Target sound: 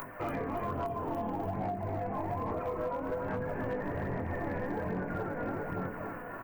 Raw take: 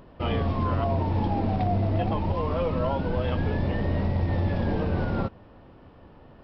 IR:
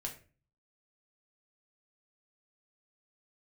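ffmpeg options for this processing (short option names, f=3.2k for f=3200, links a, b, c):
-filter_complex "[0:a]asuperstop=centerf=4600:order=8:qfactor=0.66[a];[1:a]atrim=start_sample=2205,atrim=end_sample=3969[b];[a][b]afir=irnorm=-1:irlink=0,acrossover=split=950[c][d];[d]acompressor=mode=upward:threshold=-42dB:ratio=2.5[e];[c][e]amix=inputs=2:normalize=0,aecho=1:1:287|574|861|1148|1435|1722|2009|2296:0.562|0.332|0.196|0.115|0.0681|0.0402|0.0237|0.014,flanger=delay=19.5:depth=4.9:speed=0.55,asettb=1/sr,asplit=3[f][g][h];[f]atrim=end=0.654[i];[g]atrim=start=0.65:end=1.53,asetpts=PTS-STARTPTS,afade=t=in:d=0.004:c=qsin,afade=t=out:st=0.876:d=0.004:c=qsin,highshelf=f=3k:t=q:w=3:g=11.5[j];[h]atrim=start=1.526[k];[i][j]acrossfade=d=0.004:c1=hsin:c2=qsin[l];[l][k]acrossfade=d=0.004:c1=qsin:c2=hsin,aphaser=in_gain=1:out_gain=1:delay=4.1:decay=0.37:speed=1.2:type=sinusoidal,aemphasis=mode=production:type=bsi,acompressor=threshold=-37dB:ratio=20,asoftclip=type=hard:threshold=-34dB,volume=6.5dB"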